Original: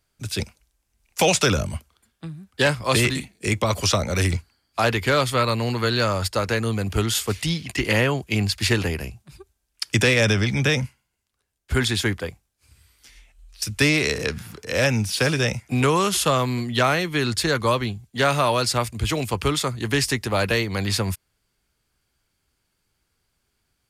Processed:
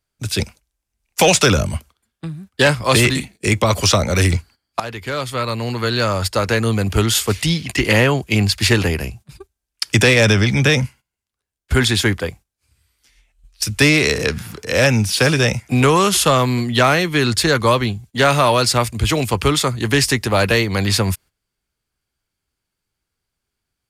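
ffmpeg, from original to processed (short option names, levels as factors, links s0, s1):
-filter_complex "[0:a]asplit=2[s0][s1];[s0]atrim=end=4.8,asetpts=PTS-STARTPTS,afade=t=out:st=4.796:d=0.004:c=hsin:silence=0.141254[s2];[s1]atrim=start=4.8,asetpts=PTS-STARTPTS,afade=t=in:d=1.91:silence=0.141254[s3];[s2][s3]concat=n=2:v=0:a=1,agate=range=0.224:threshold=0.00562:ratio=16:detection=peak,acontrast=67"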